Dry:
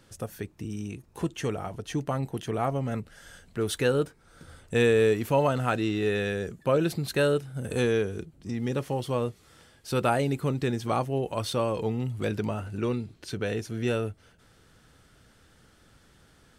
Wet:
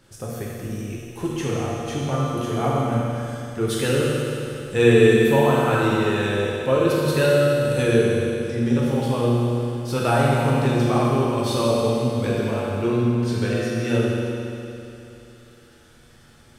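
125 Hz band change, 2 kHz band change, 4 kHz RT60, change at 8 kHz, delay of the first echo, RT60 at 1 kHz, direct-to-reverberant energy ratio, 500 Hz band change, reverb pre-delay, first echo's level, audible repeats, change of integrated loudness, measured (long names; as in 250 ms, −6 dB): +8.5 dB, +7.0 dB, 2.9 s, +7.0 dB, no echo audible, 2.9 s, −6.0 dB, +7.0 dB, 8 ms, no echo audible, no echo audible, +7.5 dB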